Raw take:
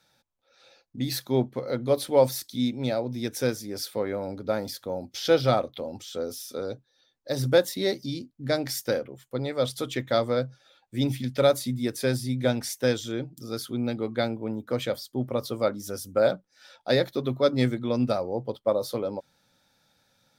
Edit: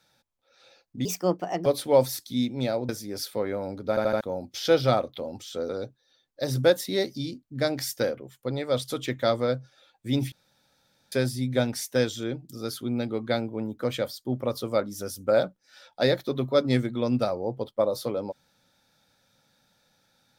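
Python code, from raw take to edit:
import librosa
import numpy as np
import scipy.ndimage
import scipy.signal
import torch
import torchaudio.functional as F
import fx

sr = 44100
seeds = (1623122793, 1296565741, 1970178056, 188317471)

y = fx.edit(x, sr, fx.speed_span(start_s=1.05, length_s=0.84, speed=1.38),
    fx.cut(start_s=3.12, length_s=0.37),
    fx.stutter_over(start_s=4.49, slice_s=0.08, count=4),
    fx.cut(start_s=6.29, length_s=0.28),
    fx.room_tone_fill(start_s=11.2, length_s=0.8), tone=tone)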